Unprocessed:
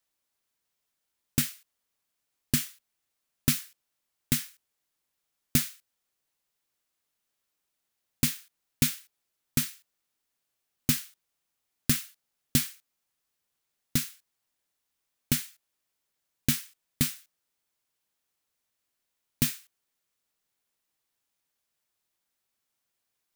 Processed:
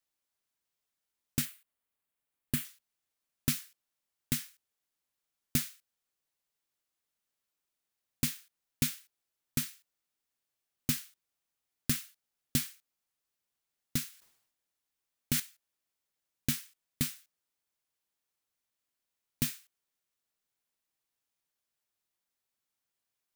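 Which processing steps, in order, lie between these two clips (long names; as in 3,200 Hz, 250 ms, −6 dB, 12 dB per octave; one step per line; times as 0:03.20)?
0:01.45–0:02.65: parametric band 5,600 Hz −9 dB 0.9 octaves
0:14.09–0:15.40: level that may fall only so fast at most 74 dB per second
level −5.5 dB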